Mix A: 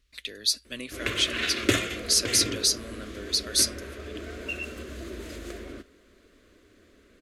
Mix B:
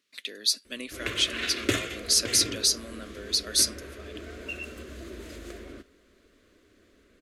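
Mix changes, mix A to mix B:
speech: add high-pass filter 180 Hz 24 dB per octave
background −3.0 dB

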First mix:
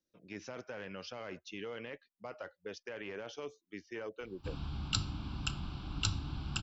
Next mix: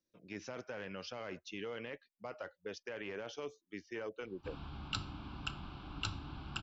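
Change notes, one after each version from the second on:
background: add bass and treble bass −8 dB, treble −13 dB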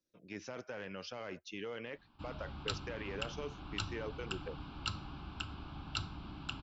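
background: entry −2.25 s

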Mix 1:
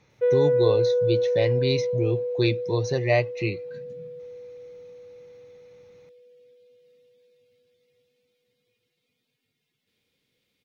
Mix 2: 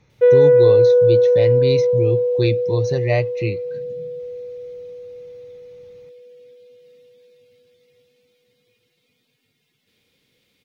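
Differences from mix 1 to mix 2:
speech: add low-shelf EQ 150 Hz +10 dB
background +9.5 dB

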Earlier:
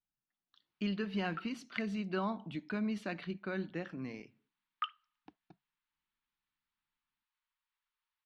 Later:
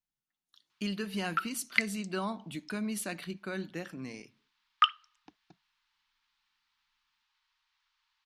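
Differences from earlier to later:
background +11.5 dB
master: remove high-frequency loss of the air 230 metres

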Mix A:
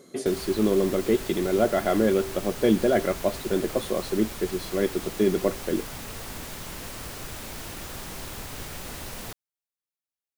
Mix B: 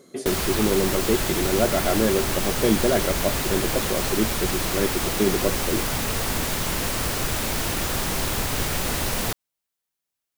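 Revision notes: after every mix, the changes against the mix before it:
background +12.0 dB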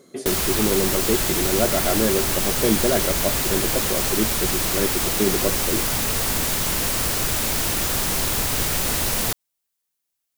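background: add high-shelf EQ 4,300 Hz +6.5 dB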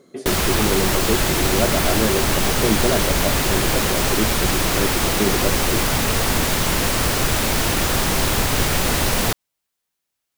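background +6.5 dB
master: add high-shelf EQ 5,300 Hz −9 dB

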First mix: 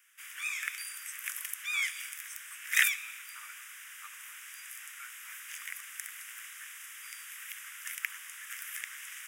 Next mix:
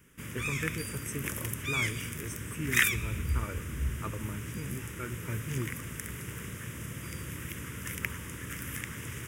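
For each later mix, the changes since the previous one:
speech +4.0 dB
master: remove high-pass filter 1,400 Hz 24 dB per octave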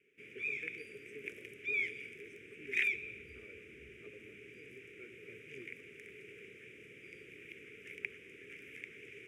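speech −5.0 dB
master: add pair of resonant band-passes 990 Hz, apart 2.5 octaves

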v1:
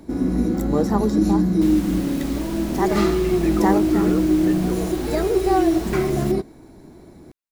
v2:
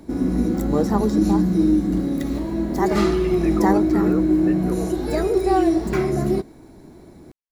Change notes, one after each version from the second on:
second sound: muted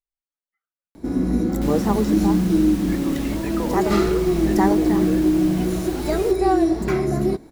first sound: entry +0.95 s
second sound: unmuted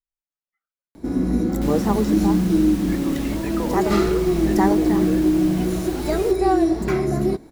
nothing changed

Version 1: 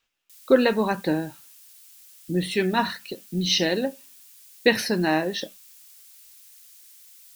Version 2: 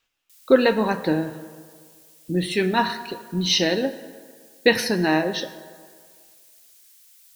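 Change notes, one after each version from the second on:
background −5.5 dB
reverb: on, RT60 1.9 s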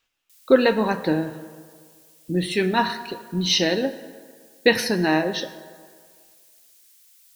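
background: send −9.0 dB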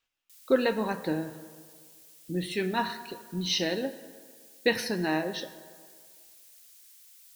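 speech −8.0 dB

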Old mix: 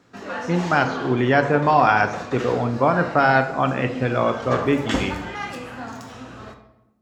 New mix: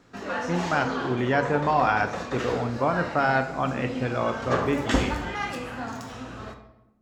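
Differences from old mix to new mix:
speech −6.0 dB
master: remove high-pass filter 67 Hz

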